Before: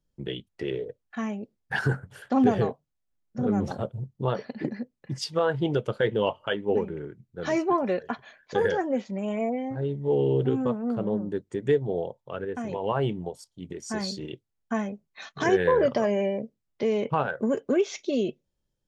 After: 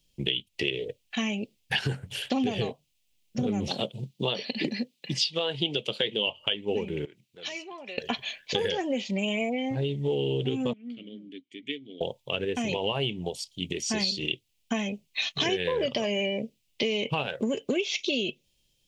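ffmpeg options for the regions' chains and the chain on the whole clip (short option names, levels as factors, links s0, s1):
-filter_complex "[0:a]asettb=1/sr,asplit=3[s0][s1][s2];[s0]atrim=end=3.684[s3];[s1]atrim=start=3.68:end=6.27,asetpts=PTS-STARTPTS,afade=t=in:d=0.004:c=qsin,afade=t=out:st=2.586:d=0.004:c=qsin,highpass=f=150:w=0.5412,highpass=f=150:w=1.3066,equalizer=f=3900:w=1.7:g=5.5[s4];[s2]atrim=start=6.266[s5];[s3][s4]acrossfade=d=0.004:c1=hsin:c2=qsin[s6];[s6][s5]acrossfade=d=0.004:c1=qsin:c2=hsin,asettb=1/sr,asplit=3[s7][s8][s9];[s7]atrim=end=7.054[s10];[s8]atrim=start=7.05:end=7.98,asetpts=PTS-STARTPTS,afade=t=in:d=0.004:c=qsin,afade=t=out:st=0.926:d=0.004:c=qsin,highshelf=f=6300:g=-4.5,acompressor=threshold=0.00501:ratio=2.5:attack=3.2:release=140:knee=1:detection=peak,highpass=f=830:p=1[s11];[s9]atrim=start=7.976[s12];[s10][s11]acrossfade=d=0.004:c1=hsin:c2=qsin[s13];[s13][s12]acrossfade=d=0.004:c1=qsin:c2=hsin,asettb=1/sr,asplit=3[s14][s15][s16];[s14]atrim=end=10.734[s17];[s15]atrim=start=10.73:end=12.01,asetpts=PTS-STARTPTS,afade=t=in:d=0.004:c=qsin,afade=t=out:st=1.276:d=0.004:c=qsin,asplit=3[s18][s19][s20];[s18]bandpass=f=270:t=q:w=8,volume=1[s21];[s19]bandpass=f=2290:t=q:w=8,volume=0.501[s22];[s20]bandpass=f=3010:t=q:w=8,volume=0.355[s23];[s21][s22][s23]amix=inputs=3:normalize=0,lowshelf=f=440:g=-10.5[s24];[s16]atrim=start=12.006[s25];[s17][s24]acrossfade=d=0.004:c1=hsin:c2=qsin[s26];[s26][s25]acrossfade=d=0.004:c1=qsin:c2=hsin,acrossover=split=5100[s27][s28];[s28]acompressor=threshold=0.00112:ratio=4:attack=1:release=60[s29];[s27][s29]amix=inputs=2:normalize=0,highshelf=f=2000:t=q:w=3:g=11,acompressor=threshold=0.0316:ratio=6,volume=1.78"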